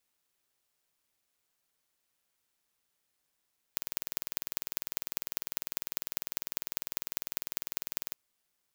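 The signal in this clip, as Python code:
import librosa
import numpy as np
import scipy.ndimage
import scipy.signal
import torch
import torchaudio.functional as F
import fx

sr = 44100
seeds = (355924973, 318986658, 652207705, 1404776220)

y = fx.impulse_train(sr, length_s=4.37, per_s=20.0, accent_every=4, level_db=-1.5)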